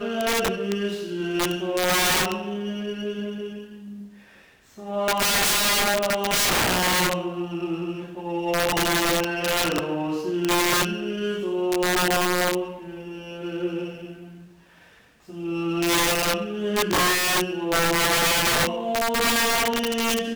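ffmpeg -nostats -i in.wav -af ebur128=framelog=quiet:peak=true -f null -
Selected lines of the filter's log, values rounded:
Integrated loudness:
  I:         -22.5 LUFS
  Threshold: -33.3 LUFS
Loudness range:
  LRA:         6.7 LU
  Threshold: -43.5 LUFS
  LRA low:   -27.6 LUFS
  LRA high:  -20.9 LUFS
True peak:
  Peak:      -12.4 dBFS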